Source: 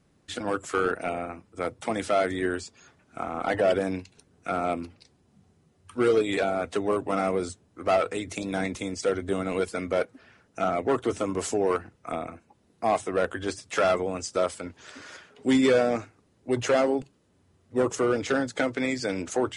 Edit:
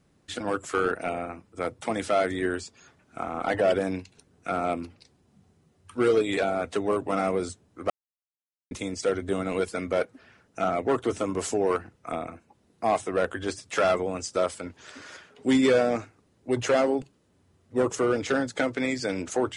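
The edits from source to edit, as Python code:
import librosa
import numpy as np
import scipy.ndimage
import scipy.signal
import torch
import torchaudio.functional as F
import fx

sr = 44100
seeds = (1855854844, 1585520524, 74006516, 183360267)

y = fx.edit(x, sr, fx.silence(start_s=7.9, length_s=0.81), tone=tone)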